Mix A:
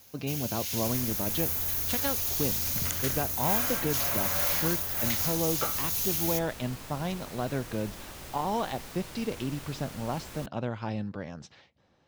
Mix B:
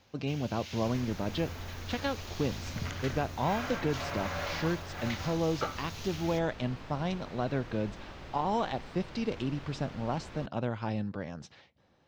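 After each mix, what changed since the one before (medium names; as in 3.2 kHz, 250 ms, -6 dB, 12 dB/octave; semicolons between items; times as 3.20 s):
speech: remove distance through air 180 m; master: add distance through air 210 m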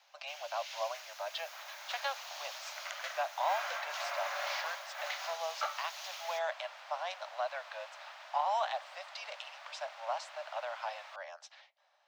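second sound: entry +0.70 s; master: add steep high-pass 580 Hz 96 dB/octave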